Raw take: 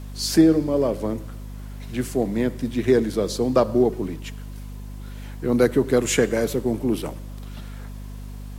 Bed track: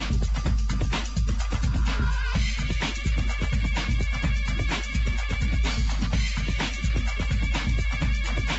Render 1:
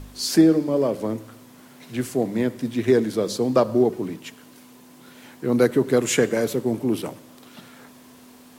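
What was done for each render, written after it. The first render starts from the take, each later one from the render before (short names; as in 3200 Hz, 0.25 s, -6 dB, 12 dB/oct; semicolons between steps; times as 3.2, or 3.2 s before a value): de-hum 50 Hz, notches 4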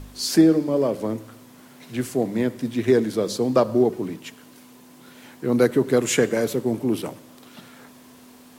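nothing audible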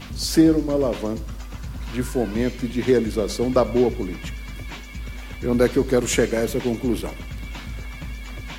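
add bed track -8.5 dB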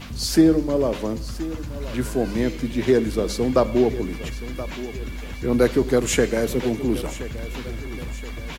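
feedback echo 1.024 s, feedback 46%, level -15 dB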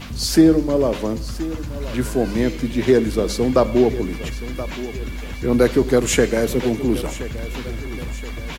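gain +3 dB; limiter -3 dBFS, peak gain reduction 1.5 dB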